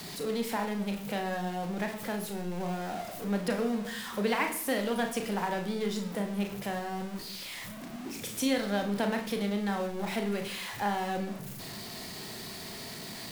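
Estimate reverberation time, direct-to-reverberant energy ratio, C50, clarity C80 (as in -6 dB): 0.70 s, 4.0 dB, 8.5 dB, 12.5 dB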